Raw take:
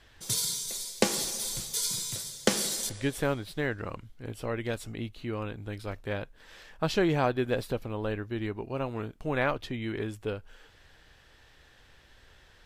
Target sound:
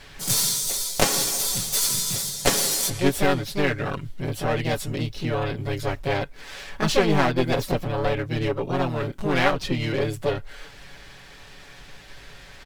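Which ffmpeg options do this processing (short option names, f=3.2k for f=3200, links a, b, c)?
-filter_complex "[0:a]aecho=1:1:7.1:0.79,asplit=2[a][b];[b]acompressor=threshold=-39dB:ratio=6,volume=-2.5dB[c];[a][c]amix=inputs=2:normalize=0,aeval=exprs='clip(val(0),-1,0.0422)':c=same,asplit=2[d][e];[e]asetrate=58866,aresample=44100,atempo=0.749154,volume=-3dB[f];[d][f]amix=inputs=2:normalize=0,volume=4.5dB"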